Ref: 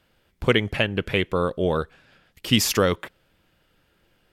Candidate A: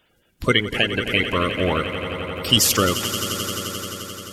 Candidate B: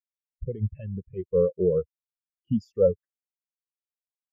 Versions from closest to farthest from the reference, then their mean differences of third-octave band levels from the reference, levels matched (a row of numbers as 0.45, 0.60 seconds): A, B; 8.0, 17.5 decibels